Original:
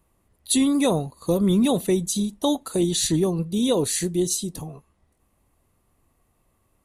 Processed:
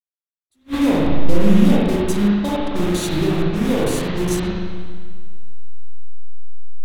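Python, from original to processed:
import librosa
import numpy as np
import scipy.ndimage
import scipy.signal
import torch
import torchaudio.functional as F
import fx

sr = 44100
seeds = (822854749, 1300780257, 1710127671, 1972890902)

y = fx.delta_hold(x, sr, step_db=-22.0)
y = fx.env_lowpass(y, sr, base_hz=340.0, full_db=-21.5)
y = fx.low_shelf(y, sr, hz=97.0, db=11.0)
y = fx.rev_spring(y, sr, rt60_s=1.7, pass_ms=(39, 54), chirp_ms=65, drr_db=-7.0)
y = fx.attack_slew(y, sr, db_per_s=430.0)
y = F.gain(torch.from_numpy(y), -5.0).numpy()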